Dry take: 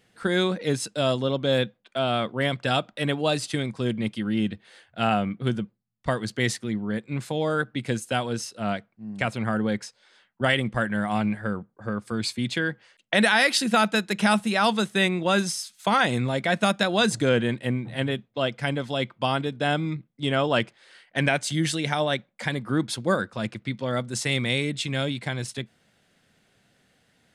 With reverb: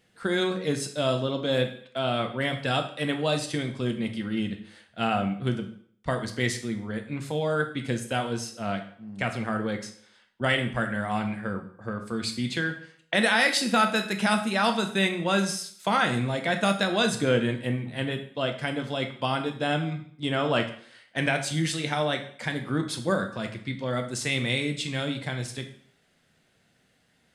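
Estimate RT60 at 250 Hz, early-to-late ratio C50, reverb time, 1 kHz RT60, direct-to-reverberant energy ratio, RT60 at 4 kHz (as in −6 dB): 0.55 s, 10.5 dB, 0.55 s, 0.55 s, 5.0 dB, 0.55 s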